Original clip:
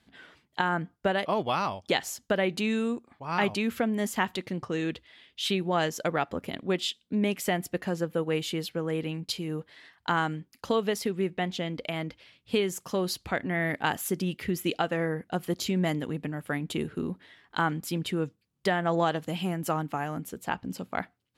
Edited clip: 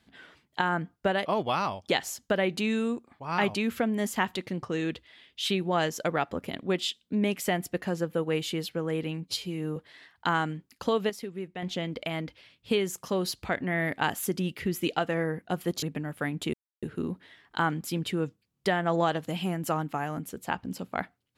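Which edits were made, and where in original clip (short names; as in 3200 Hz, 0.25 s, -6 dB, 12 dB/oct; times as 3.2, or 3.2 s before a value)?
9.24–9.59 stretch 1.5×
10.92–11.45 gain -8 dB
15.65–16.11 cut
16.82 insert silence 0.29 s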